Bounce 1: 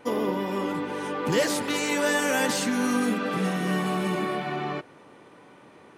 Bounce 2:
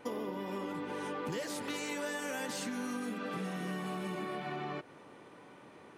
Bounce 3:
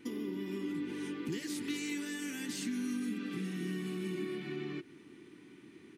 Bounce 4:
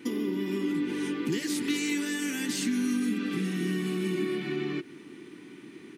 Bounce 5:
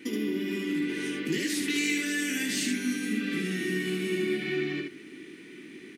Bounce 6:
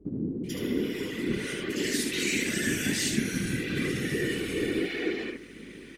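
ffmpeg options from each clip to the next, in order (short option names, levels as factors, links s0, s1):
-af "acompressor=threshold=0.0251:ratio=6,volume=0.668"
-af "firequalizer=gain_entry='entry(110,0);entry(350,8);entry(530,-20);entry(2000,1)':delay=0.05:min_phase=1,volume=0.841"
-af "highpass=130,volume=2.66"
-filter_complex "[0:a]equalizer=f=125:t=o:w=1:g=-7,equalizer=f=1000:t=o:w=1:g=-11,equalizer=f=2000:t=o:w=1:g=6,asplit=2[s0][s1];[s1]aecho=0:1:19|75:0.473|0.668[s2];[s0][s2]amix=inputs=2:normalize=0"
-filter_complex "[0:a]acrossover=split=290|2300[s0][s1][s2];[s2]adelay=440[s3];[s1]adelay=490[s4];[s0][s4][s3]amix=inputs=3:normalize=0,afftfilt=real='hypot(re,im)*cos(2*PI*random(0))':imag='hypot(re,im)*sin(2*PI*random(1))':win_size=512:overlap=0.75,aeval=exprs='val(0)+0.000398*(sin(2*PI*50*n/s)+sin(2*PI*2*50*n/s)/2+sin(2*PI*3*50*n/s)/3+sin(2*PI*4*50*n/s)/4+sin(2*PI*5*50*n/s)/5)':c=same,volume=2.66"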